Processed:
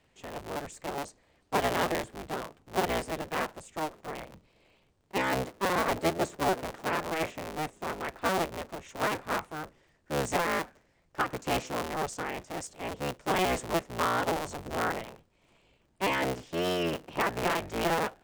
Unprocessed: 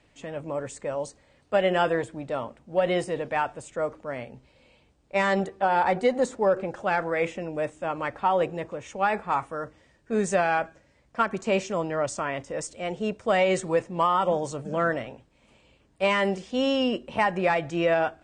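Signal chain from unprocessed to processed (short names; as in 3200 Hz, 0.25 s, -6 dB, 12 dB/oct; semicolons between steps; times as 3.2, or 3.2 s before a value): cycle switcher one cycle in 3, inverted; gain -5.5 dB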